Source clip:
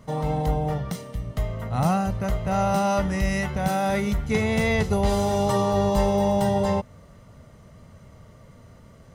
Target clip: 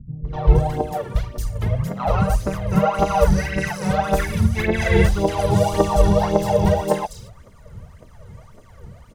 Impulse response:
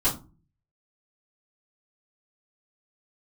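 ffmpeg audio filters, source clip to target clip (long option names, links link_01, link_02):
-filter_complex "[0:a]aphaser=in_gain=1:out_gain=1:delay=2.4:decay=0.79:speed=1.8:type=triangular,acrossover=split=240|4600[link_01][link_02][link_03];[link_02]adelay=250[link_04];[link_03]adelay=470[link_05];[link_01][link_04][link_05]amix=inputs=3:normalize=0,asplit=2[link_06][link_07];[link_07]asetrate=35002,aresample=44100,atempo=1.25992,volume=-5dB[link_08];[link_06][link_08]amix=inputs=2:normalize=0,volume=-1dB"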